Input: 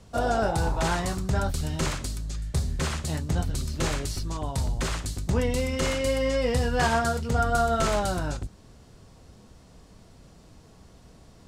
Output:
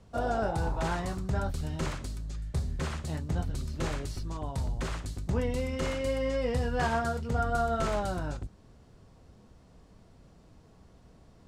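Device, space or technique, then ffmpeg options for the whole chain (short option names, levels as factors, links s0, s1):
behind a face mask: -af "highshelf=f=3100:g=-8,volume=0.596"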